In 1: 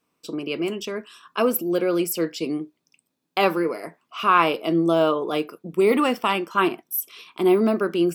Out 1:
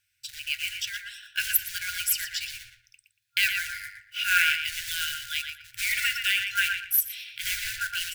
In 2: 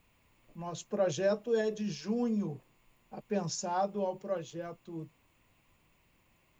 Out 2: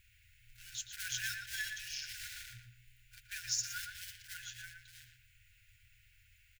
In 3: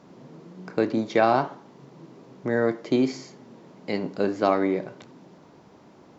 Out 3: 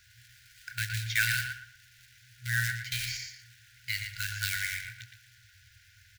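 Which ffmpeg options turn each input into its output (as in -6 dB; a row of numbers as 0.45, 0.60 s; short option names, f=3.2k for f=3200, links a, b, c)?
-filter_complex "[0:a]acrusher=bits=4:mode=log:mix=0:aa=0.000001,asplit=2[a][b];[b]adelay=117,lowpass=f=2.5k:p=1,volume=-3.5dB,asplit=2[c][d];[d]adelay=117,lowpass=f=2.5k:p=1,volume=0.31,asplit=2[e][f];[f]adelay=117,lowpass=f=2.5k:p=1,volume=0.31,asplit=2[g][h];[h]adelay=117,lowpass=f=2.5k:p=1,volume=0.31[i];[a][c][e][g][i]amix=inputs=5:normalize=0,afftfilt=real='re*(1-between(b*sr/4096,120,1400))':imag='im*(1-between(b*sr/4096,120,1400))':win_size=4096:overlap=0.75,volume=3.5dB"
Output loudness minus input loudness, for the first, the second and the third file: -4.0, -6.0, -7.0 LU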